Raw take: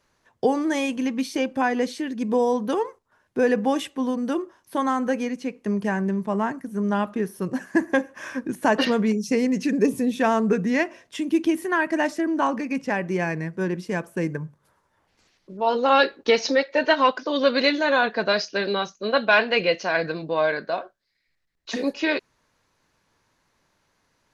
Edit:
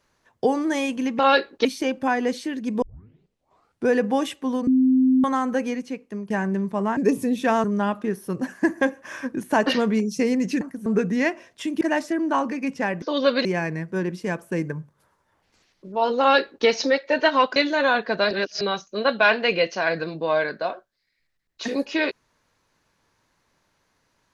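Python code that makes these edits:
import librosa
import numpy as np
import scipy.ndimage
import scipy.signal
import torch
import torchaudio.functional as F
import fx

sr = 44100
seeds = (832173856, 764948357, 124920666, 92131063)

y = fx.edit(x, sr, fx.tape_start(start_s=2.36, length_s=1.07),
    fx.bleep(start_s=4.21, length_s=0.57, hz=259.0, db=-14.0),
    fx.fade_out_to(start_s=5.31, length_s=0.53, floor_db=-11.5),
    fx.swap(start_s=6.51, length_s=0.25, other_s=9.73, other_length_s=0.67),
    fx.cut(start_s=11.35, length_s=0.54),
    fx.duplicate(start_s=15.85, length_s=0.46, to_s=1.19),
    fx.move(start_s=17.21, length_s=0.43, to_s=13.1),
    fx.reverse_span(start_s=18.39, length_s=0.3), tone=tone)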